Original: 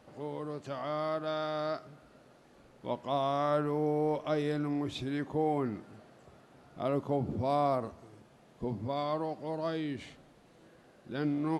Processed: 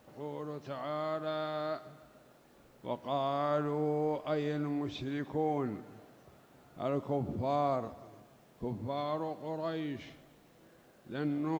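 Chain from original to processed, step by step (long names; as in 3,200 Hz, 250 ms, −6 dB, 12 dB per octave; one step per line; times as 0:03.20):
hearing-aid frequency compression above 3,600 Hz 1.5 to 1
repeating echo 148 ms, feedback 52%, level −19 dB
bit-depth reduction 12 bits, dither triangular
level −2 dB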